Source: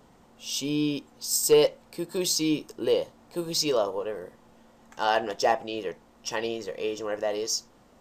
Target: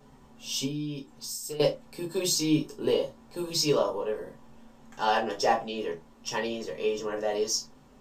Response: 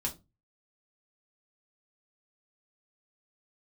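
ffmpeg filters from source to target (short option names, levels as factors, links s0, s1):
-filter_complex "[0:a]asettb=1/sr,asplit=3[s0][s1][s2];[s0]atrim=end=0.654[s3];[s1]atrim=start=0.65:end=1.6,asetpts=PTS-STARTPTS,afade=t=in:d=0.004:c=qsin,afade=t=out:st=0.946:d=0.004:c=qsin,acompressor=threshold=0.02:ratio=6[s4];[s2]atrim=start=1.596[s5];[s3][s4]acrossfade=d=0.004:c1=hsin:c2=qsin[s6];[s6][s5]acrossfade=d=0.004:c1=qsin:c2=hsin[s7];[1:a]atrim=start_sample=2205,afade=t=out:st=0.14:d=0.01,atrim=end_sample=6615[s8];[s7][s8]afir=irnorm=-1:irlink=0,volume=0.708"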